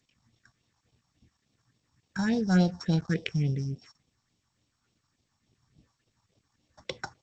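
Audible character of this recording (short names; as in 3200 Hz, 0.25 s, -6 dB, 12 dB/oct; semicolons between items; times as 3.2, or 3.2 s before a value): a buzz of ramps at a fixed pitch in blocks of 8 samples; phasing stages 4, 3.5 Hz, lowest notch 430–1600 Hz; G.722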